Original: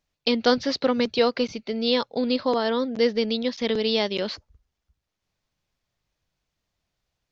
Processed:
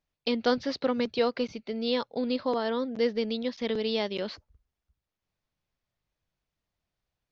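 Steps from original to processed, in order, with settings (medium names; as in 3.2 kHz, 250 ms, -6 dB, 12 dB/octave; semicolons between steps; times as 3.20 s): treble shelf 4.9 kHz -8 dB; trim -5 dB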